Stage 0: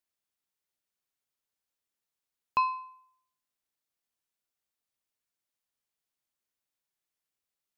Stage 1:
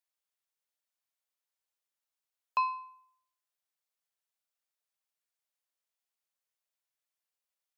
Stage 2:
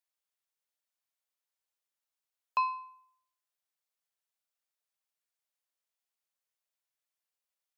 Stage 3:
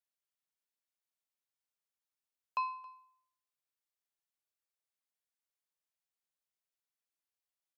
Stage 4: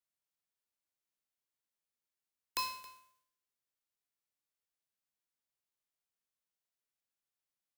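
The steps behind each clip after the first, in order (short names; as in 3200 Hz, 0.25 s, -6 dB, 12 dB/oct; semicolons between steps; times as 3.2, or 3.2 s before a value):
steep high-pass 470 Hz; gain -2.5 dB
nothing audible
echo 0.272 s -22 dB; gain -5.5 dB
spectral whitening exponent 0.1; gain -1.5 dB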